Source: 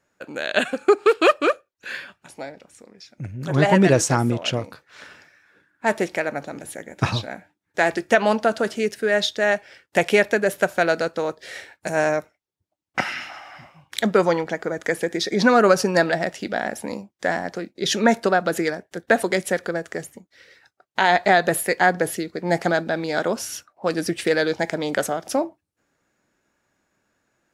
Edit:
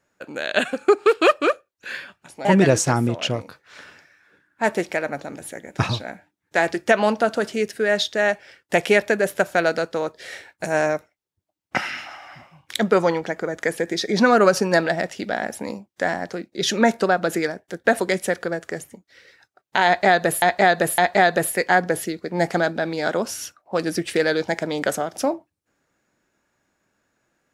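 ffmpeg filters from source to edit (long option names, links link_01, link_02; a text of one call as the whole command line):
ffmpeg -i in.wav -filter_complex "[0:a]asplit=4[link_01][link_02][link_03][link_04];[link_01]atrim=end=2.452[link_05];[link_02]atrim=start=3.678:end=21.652[link_06];[link_03]atrim=start=21.088:end=21.652[link_07];[link_04]atrim=start=21.088[link_08];[link_05][link_06]acrossfade=duration=0.004:curve1=hsin:curve2=hsin[link_09];[link_09][link_07]acrossfade=duration=0.004:curve1=hsin:curve2=hsin[link_10];[link_10][link_08]acrossfade=duration=0.004:curve1=hsin:curve2=hsin" out.wav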